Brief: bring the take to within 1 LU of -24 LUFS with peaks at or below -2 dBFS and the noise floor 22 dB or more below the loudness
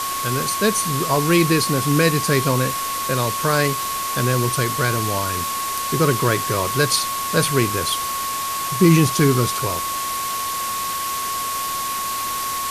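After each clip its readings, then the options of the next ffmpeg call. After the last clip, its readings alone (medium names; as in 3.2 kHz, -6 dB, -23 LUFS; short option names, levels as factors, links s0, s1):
steady tone 1.1 kHz; tone level -24 dBFS; noise floor -25 dBFS; noise floor target -42 dBFS; loudness -19.5 LUFS; peak level -3.0 dBFS; loudness target -24.0 LUFS
-> -af "bandreject=f=1100:w=30"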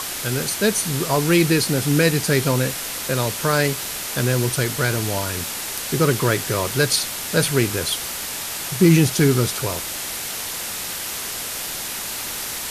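steady tone not found; noise floor -29 dBFS; noise floor target -43 dBFS
-> -af "afftdn=nr=14:nf=-29"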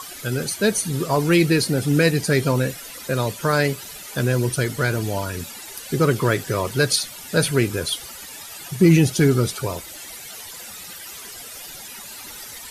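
noise floor -38 dBFS; noise floor target -43 dBFS
-> -af "afftdn=nr=6:nf=-38"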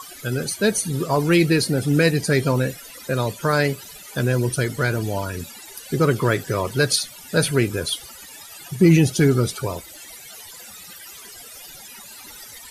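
noise floor -41 dBFS; noise floor target -43 dBFS
-> -af "afftdn=nr=6:nf=-41"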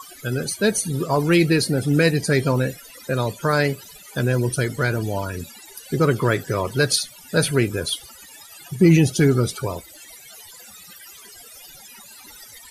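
noise floor -44 dBFS; loudness -21.0 LUFS; peak level -4.0 dBFS; loudness target -24.0 LUFS
-> -af "volume=0.708"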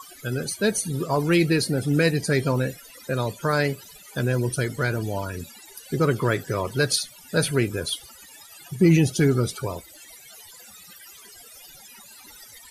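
loudness -24.0 LUFS; peak level -7.0 dBFS; noise floor -47 dBFS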